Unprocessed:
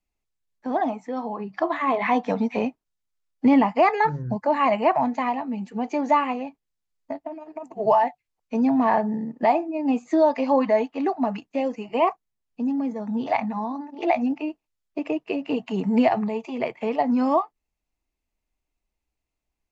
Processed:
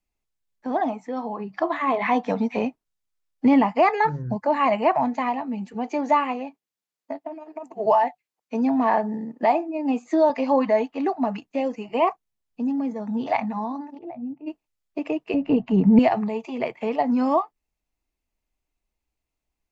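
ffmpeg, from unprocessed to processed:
-filter_complex "[0:a]asettb=1/sr,asplit=3[a][b][c];[a]atrim=end=5.744[d];[b]atrim=start=5.74:end=10.3,asetpts=PTS-STARTPTS,afade=t=in:d=0.004:c=qsin,afade=t=out:st=4.556:d=0.004:c=qsin,highpass=200[e];[c]atrim=start=10.296[f];[d][e]acrossfade=d=0.004:c1=hsin:c2=qsin[g];[g][f]acrossfade=d=0.004:c1=qsin:c2=hsin,asplit=3[h][i][j];[h]afade=t=out:st=13.97:d=0.02[k];[i]bandpass=f=120:t=q:w=1.4,afade=t=in:st=13.97:d=0.02,afade=t=out:st=14.46:d=0.02[l];[j]afade=t=in:st=14.46:d=0.02[m];[k][l][m]amix=inputs=3:normalize=0,asettb=1/sr,asplit=3[n][o][p];[n]atrim=end=15.344[q];[o]atrim=start=15.34:end=15.99,asetpts=PTS-STARTPTS,afade=t=in:d=0.004:c=qsin,afade=t=out:st=0.646:d=0.004:c=qsin,aemphasis=mode=reproduction:type=riaa[r];[p]atrim=start=15.986[s];[q][r]acrossfade=d=0.004:c1=hsin:c2=qsin[t];[t][s]acrossfade=d=0.004:c1=qsin:c2=hsin"

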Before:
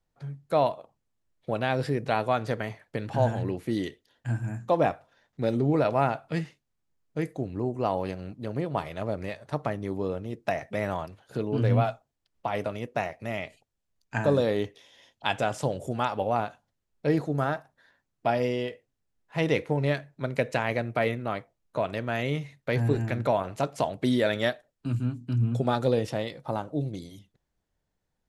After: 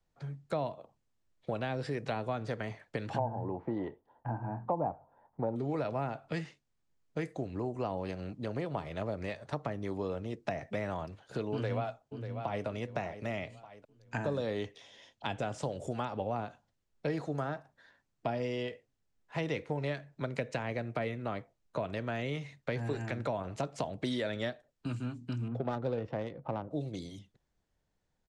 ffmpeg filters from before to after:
-filter_complex "[0:a]asettb=1/sr,asplit=3[a][b][c];[a]atrim=end=3.184[d];[b]atrim=start=3.18:end=5.56,asetpts=PTS-STARTPTS,afade=t=in:d=0.004:c=qsin,afade=t=out:st=2.376:d=0.004:c=qsin,lowpass=f=890:t=q:w=5.2[e];[c]atrim=start=5.556[f];[d][e]acrossfade=d=0.004:c1=hsin:c2=qsin[g];[g][f]acrossfade=d=0.004:c1=qsin:c2=hsin,asplit=2[h][i];[i]afade=t=in:st=11.52:d=0.01,afade=t=out:st=12.66:d=0.01,aecho=0:1:590|1180|1770|2360:0.16788|0.0671522|0.0268609|0.0107443[j];[h][j]amix=inputs=2:normalize=0,asettb=1/sr,asplit=3[k][l][m];[k]atrim=end=25.484[n];[l]atrim=start=25.48:end=26.71,asetpts=PTS-STARTPTS,afade=t=in:d=0.004:c=qsin,afade=t=out:st=1.226:d=0.004:c=qsin,adynamicsmooth=sensitivity=1.5:basefreq=960[o];[m]atrim=start=26.706[p];[n][o]acrossfade=d=0.004:c1=hsin:c2=qsin[q];[q][p]acrossfade=d=0.004:c1=qsin:c2=hsin,acrossover=split=260|530[r][s][t];[r]acompressor=threshold=-39dB:ratio=4[u];[s]acompressor=threshold=-41dB:ratio=4[v];[t]acompressor=threshold=-38dB:ratio=4[w];[u][v][w]amix=inputs=3:normalize=0,lowpass=f=8.6k:w=0.5412,lowpass=f=8.6k:w=1.3066"

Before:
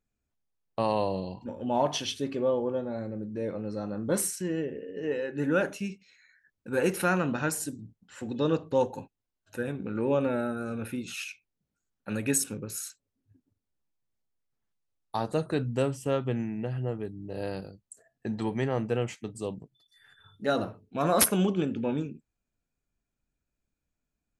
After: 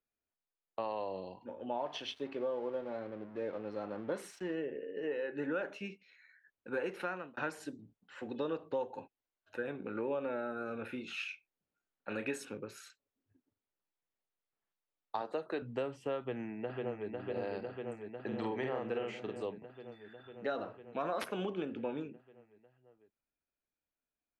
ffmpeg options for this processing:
-filter_complex "[0:a]asettb=1/sr,asplit=3[a][b][c];[a]atrim=end=1.784[d];[b]atrim=start=1.78:end=4.55,asetpts=PTS-STARTPTS,afade=t=in:d=0.004:c=qsin,afade=t=out:st=2.766:d=0.004:c=qsin,aeval=exprs='sgn(val(0))*max(abs(val(0))-0.00355,0)':c=same[e];[c]atrim=start=4.546[f];[d][e]acrossfade=d=0.004:c1=hsin:c2=qsin[g];[g][f]acrossfade=d=0.004:c1=qsin:c2=hsin,asettb=1/sr,asplit=3[h][i][j];[h]atrim=end=10.884[k];[i]atrim=start=10.88:end=12.45,asetpts=PTS-STARTPTS,afade=t=in:d=0.004:c=qsin,afade=t=out:st=1.566:d=0.004:c=qsin,asplit=2[l][m];[m]adelay=31,volume=-8.5dB[n];[l][n]amix=inputs=2:normalize=0,atrim=end_sample=69237[o];[j]atrim=start=12.446[p];[k][o]acrossfade=d=0.004:c1=hsin:c2=qsin[q];[q][p]acrossfade=d=0.004:c1=qsin:c2=hsin,asettb=1/sr,asplit=3[r][s][t];[r]atrim=end=15.214[u];[s]atrim=start=15.21:end=15.62,asetpts=PTS-STARTPTS,afade=t=in:d=0.004:c=qsin,afade=t=out:st=0.406:d=0.004:c=qsin,highpass=230[v];[t]atrim=start=15.616[w];[u][v]acrossfade=d=0.004:c1=hsin:c2=qsin[x];[x][w]acrossfade=d=0.004:c1=qsin:c2=hsin,asplit=2[y][z];[z]afade=t=in:st=16.19:d=0.01,afade=t=out:st=17.09:d=0.01,aecho=0:1:500|1000|1500|2000|2500|3000|3500|4000|4500|5000|5500|6000:0.630957|0.504766|0.403813|0.32305|0.25844|0.206752|0.165402|0.132321|0.105857|0.0846857|0.0677485|0.0541988[aa];[y][aa]amix=inputs=2:normalize=0,asplit=3[ab][ac][ad];[ab]afade=t=out:st=18.31:d=0.02[ae];[ac]asplit=2[af][ag];[ag]adelay=46,volume=-2dB[ah];[af][ah]amix=inputs=2:normalize=0,afade=t=in:st=18.31:d=0.02,afade=t=out:st=19.41:d=0.02[ai];[ad]afade=t=in:st=19.41:d=0.02[aj];[ae][ai][aj]amix=inputs=3:normalize=0,asplit=2[ak][al];[ak]atrim=end=7.37,asetpts=PTS-STARTPTS,afade=t=out:st=6.8:d=0.57[am];[al]atrim=start=7.37,asetpts=PTS-STARTPTS,afade=t=in:d=0.004:c=hsin[an];[am][an]concat=n=2:v=0:a=1,dynaudnorm=f=450:g=11:m=4dB,acrossover=split=310 3900:gain=0.2 1 0.0708[ao][ap][aq];[ao][ap][aq]amix=inputs=3:normalize=0,acompressor=threshold=-28dB:ratio=5,volume=-5dB"

